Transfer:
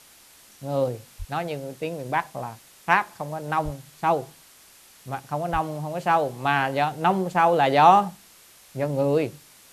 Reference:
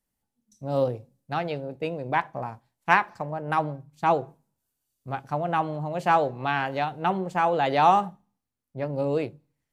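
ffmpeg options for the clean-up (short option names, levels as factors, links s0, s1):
-filter_complex "[0:a]asplit=3[s0][s1][s2];[s0]afade=t=out:st=1.18:d=0.02[s3];[s1]highpass=f=140:w=0.5412,highpass=f=140:w=1.3066,afade=t=in:st=1.18:d=0.02,afade=t=out:st=1.3:d=0.02[s4];[s2]afade=t=in:st=1.3:d=0.02[s5];[s3][s4][s5]amix=inputs=3:normalize=0,asplit=3[s6][s7][s8];[s6]afade=t=out:st=3.64:d=0.02[s9];[s7]highpass=f=140:w=0.5412,highpass=f=140:w=1.3066,afade=t=in:st=3.64:d=0.02,afade=t=out:st=3.76:d=0.02[s10];[s8]afade=t=in:st=3.76:d=0.02[s11];[s9][s10][s11]amix=inputs=3:normalize=0,asplit=3[s12][s13][s14];[s12]afade=t=out:st=5.52:d=0.02[s15];[s13]highpass=f=140:w=0.5412,highpass=f=140:w=1.3066,afade=t=in:st=5.52:d=0.02,afade=t=out:st=5.64:d=0.02[s16];[s14]afade=t=in:st=5.64:d=0.02[s17];[s15][s16][s17]amix=inputs=3:normalize=0,afwtdn=0.0032,asetnsamples=n=441:p=0,asendcmd='6.45 volume volume -4dB',volume=1"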